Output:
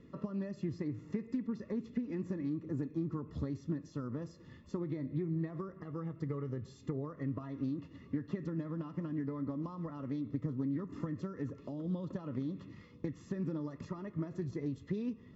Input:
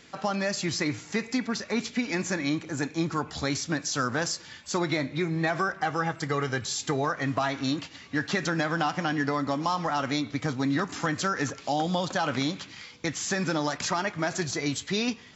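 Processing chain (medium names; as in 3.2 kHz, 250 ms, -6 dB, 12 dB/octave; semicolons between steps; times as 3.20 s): compression 12:1, threshold -33 dBFS, peak gain reduction 12 dB; boxcar filter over 57 samples; loudspeaker Doppler distortion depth 0.14 ms; trim +3.5 dB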